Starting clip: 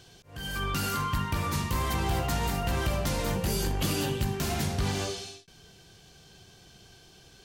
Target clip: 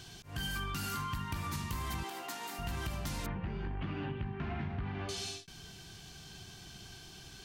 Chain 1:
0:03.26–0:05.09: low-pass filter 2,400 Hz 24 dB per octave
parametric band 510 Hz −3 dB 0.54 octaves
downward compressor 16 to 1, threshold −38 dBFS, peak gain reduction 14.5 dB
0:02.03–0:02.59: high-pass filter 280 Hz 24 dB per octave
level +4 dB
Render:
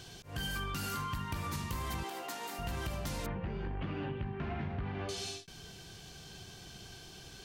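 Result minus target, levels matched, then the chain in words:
500 Hz band +3.0 dB
0:03.26–0:05.09: low-pass filter 2,400 Hz 24 dB per octave
parametric band 510 Hz −11 dB 0.54 octaves
downward compressor 16 to 1, threshold −38 dBFS, peak gain reduction 14.5 dB
0:02.03–0:02.59: high-pass filter 280 Hz 24 dB per octave
level +4 dB

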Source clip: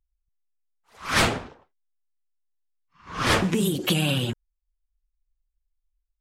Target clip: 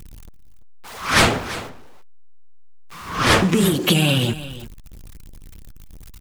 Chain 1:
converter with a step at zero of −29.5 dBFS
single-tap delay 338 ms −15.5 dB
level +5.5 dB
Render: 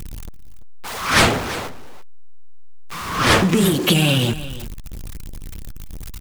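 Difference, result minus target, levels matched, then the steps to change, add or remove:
converter with a step at zero: distortion +8 dB
change: converter with a step at zero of −38 dBFS

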